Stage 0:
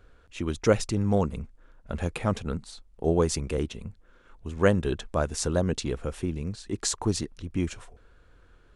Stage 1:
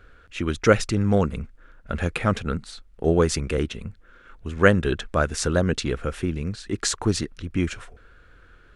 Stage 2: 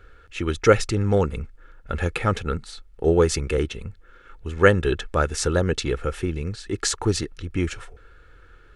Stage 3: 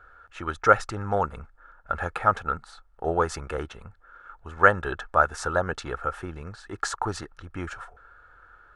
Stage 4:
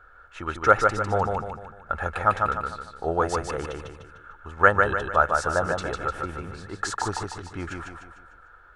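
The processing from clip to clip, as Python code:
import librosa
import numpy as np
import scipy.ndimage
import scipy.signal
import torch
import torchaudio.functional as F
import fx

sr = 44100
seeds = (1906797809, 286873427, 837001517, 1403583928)

y1 = fx.curve_eq(x, sr, hz=(520.0, 960.0, 1400.0, 7200.0), db=(0, -3, 7, -2))
y1 = y1 * librosa.db_to_amplitude(4.0)
y2 = y1 + 0.4 * np.pad(y1, (int(2.3 * sr / 1000.0), 0))[:len(y1)]
y3 = fx.band_shelf(y2, sr, hz=990.0, db=15.5, octaves=1.7)
y3 = y3 * librosa.db_to_amplitude(-10.5)
y4 = fx.echo_feedback(y3, sr, ms=150, feedback_pct=43, wet_db=-4.0)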